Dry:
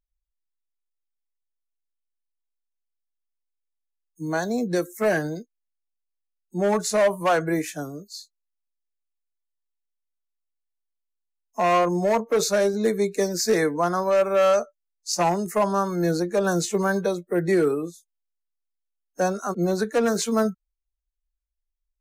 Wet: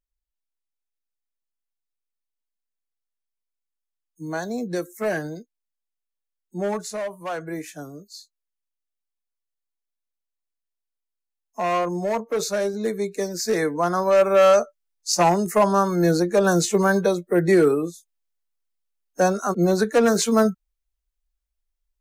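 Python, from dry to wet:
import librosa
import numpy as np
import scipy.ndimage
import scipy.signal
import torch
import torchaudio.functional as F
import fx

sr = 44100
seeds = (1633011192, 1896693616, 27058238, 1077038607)

y = fx.gain(x, sr, db=fx.line((6.64, -3.0), (7.1, -11.0), (7.99, -3.0), (13.35, -3.0), (14.27, 4.0)))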